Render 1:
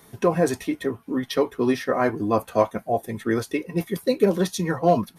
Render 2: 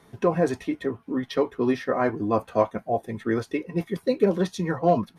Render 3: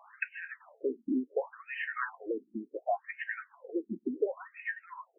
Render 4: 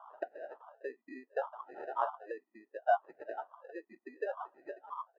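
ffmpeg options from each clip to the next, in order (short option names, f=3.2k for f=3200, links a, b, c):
-af "aemphasis=mode=reproduction:type=50fm,volume=-2dB"
-af "acompressor=threshold=-31dB:ratio=5,crystalizer=i=6.5:c=0,afftfilt=real='re*between(b*sr/1024,260*pow(2200/260,0.5+0.5*sin(2*PI*0.69*pts/sr))/1.41,260*pow(2200/260,0.5+0.5*sin(2*PI*0.69*pts/sr))*1.41)':imag='im*between(b*sr/1024,260*pow(2200/260,0.5+0.5*sin(2*PI*0.69*pts/sr))/1.41,260*pow(2200/260,0.5+0.5*sin(2*PI*0.69*pts/sr))*1.41)':win_size=1024:overlap=0.75,volume=3.5dB"
-af "acrusher=samples=20:mix=1:aa=0.000001,asuperpass=centerf=880:order=4:qfactor=1.4,volume=5.5dB"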